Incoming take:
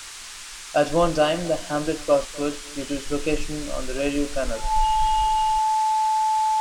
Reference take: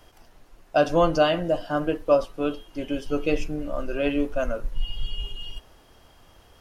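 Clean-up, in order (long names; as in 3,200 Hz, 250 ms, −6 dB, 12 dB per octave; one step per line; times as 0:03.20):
hum removal 425.8 Hz, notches 40
notch filter 870 Hz, Q 30
noise reduction from a noise print 16 dB
echo removal 253 ms −21.5 dB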